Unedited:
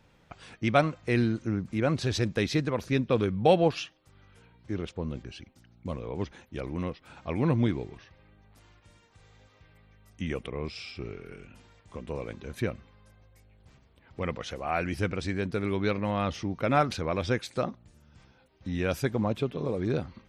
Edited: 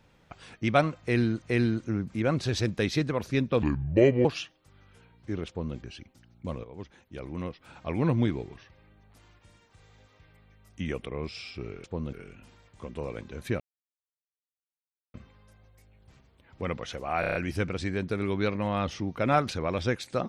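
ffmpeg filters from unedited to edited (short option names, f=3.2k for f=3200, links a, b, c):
-filter_complex "[0:a]asplit=13[a][b][c][d][e][f][g][h][i][j][k][l][m];[a]atrim=end=1.422[n];[b]atrim=start=0.998:end=3.204[o];[c]atrim=start=3.2:end=3.66,asetpts=PTS-STARTPTS,asetrate=32193,aresample=44100,atrim=end_sample=27789,asetpts=PTS-STARTPTS[p];[d]atrim=start=3.656:end=6.05,asetpts=PTS-STARTPTS,afade=t=out:st=2.39:d=0.004:c=hsin:silence=0.251189[q];[e]atrim=start=6.05:end=11.252,asetpts=PTS-STARTPTS,afade=t=in:d=1.13:silence=0.251189[r];[f]atrim=start=4.888:end=5.182[s];[g]atrim=start=11.248:end=12.72,asetpts=PTS-STARTPTS,afade=t=out:st=1.468:d=0.004:c=hsin,apad=pad_dur=1.54[t];[h]atrim=start=12.72:end=14.812,asetpts=PTS-STARTPTS,afade=t=in:d=0.004:c=hsin[u];[i]atrim=start=14.778:end=14.812[v];[j]atrim=start=14.778:end=14.812[w];[k]atrim=start=14.778:end=14.812[x];[l]atrim=start=14.778:end=14.812[y];[m]atrim=start=14.778[z];[n][o]acrossfade=d=0.004:c1=hsin:c2=hsin[aa];[aa][p]acrossfade=d=0.004:c1=hsin:c2=hsin[ab];[q][r]concat=n=2:v=0:a=1[ac];[ab][ac]acrossfade=d=0.004:c1=hsin:c2=hsin[ad];[ad][s]acrossfade=d=0.004:c1=hsin:c2=hsin[ae];[t][u]concat=n=2:v=0:a=1[af];[ae][af]acrossfade=d=0.004:c1=hsin:c2=hsin[ag];[ag][v]acrossfade=d=0.004:c1=hsin:c2=hsin[ah];[ah][w]acrossfade=d=0.004:c1=hsin:c2=hsin[ai];[ai][x]acrossfade=d=0.004:c1=hsin:c2=hsin[aj];[aj][y]acrossfade=d=0.004:c1=hsin:c2=hsin[ak];[ak][z]acrossfade=d=0.004:c1=hsin:c2=hsin"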